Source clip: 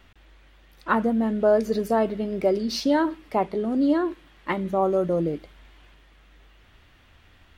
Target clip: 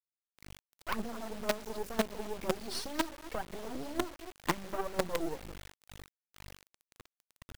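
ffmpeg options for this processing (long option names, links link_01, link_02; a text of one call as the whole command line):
ffmpeg -i in.wav -filter_complex "[0:a]acompressor=threshold=-27dB:ratio=16,asplit=2[link_01][link_02];[link_02]adelay=239.1,volume=-15dB,highshelf=frequency=4000:gain=-5.38[link_03];[link_01][link_03]amix=inputs=2:normalize=0,aphaser=in_gain=1:out_gain=1:delay=3.2:decay=0.72:speed=2:type=triangular,acrusher=bits=4:dc=4:mix=0:aa=0.000001,volume=-5dB" out.wav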